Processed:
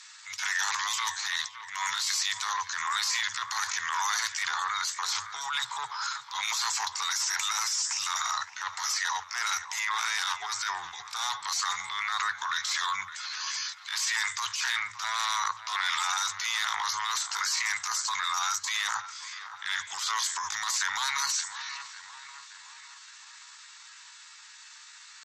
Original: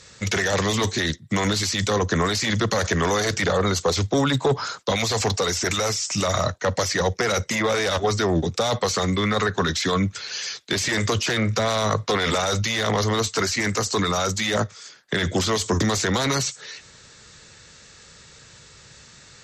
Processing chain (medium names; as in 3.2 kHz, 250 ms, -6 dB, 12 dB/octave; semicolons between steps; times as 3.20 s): elliptic high-pass 920 Hz, stop band 40 dB; dynamic bell 2.7 kHz, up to -5 dB, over -39 dBFS, Q 1.1; transient shaper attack -9 dB, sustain +4 dB; on a send: feedback echo behind a low-pass 435 ms, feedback 52%, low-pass 3 kHz, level -12 dB; on the sum: tempo 0.77×